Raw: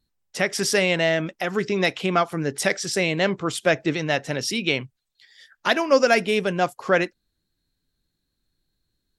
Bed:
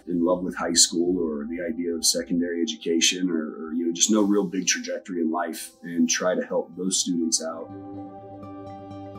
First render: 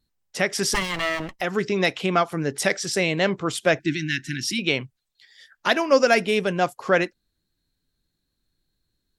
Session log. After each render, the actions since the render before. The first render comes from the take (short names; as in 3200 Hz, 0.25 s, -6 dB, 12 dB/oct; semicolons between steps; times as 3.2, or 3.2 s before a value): 0.74–1.41 minimum comb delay 1 ms; 3.79–4.59 brick-wall FIR band-stop 370–1400 Hz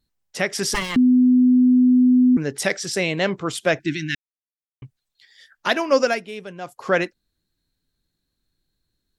0.96–2.37 bleep 251 Hz -11 dBFS; 4.15–4.82 mute; 6.03–6.82 dip -12 dB, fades 0.18 s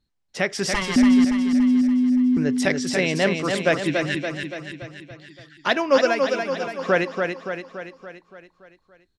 air absorption 55 m; on a send: feedback echo 0.285 s, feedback 56%, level -5 dB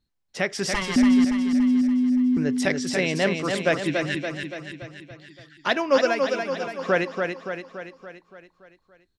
gain -2 dB